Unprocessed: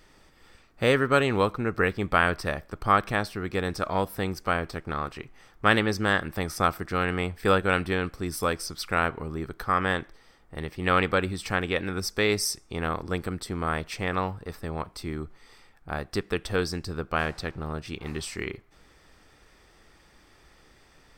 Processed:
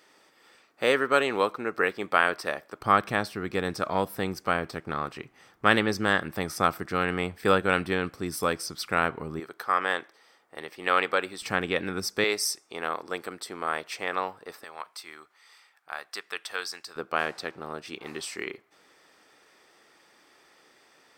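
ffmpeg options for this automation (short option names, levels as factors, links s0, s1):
-af "asetnsamples=n=441:p=0,asendcmd='2.81 highpass f 130;9.4 highpass f 440;11.42 highpass f 150;12.24 highpass f 430;14.64 highpass f 1000;16.96 highpass f 320',highpass=340"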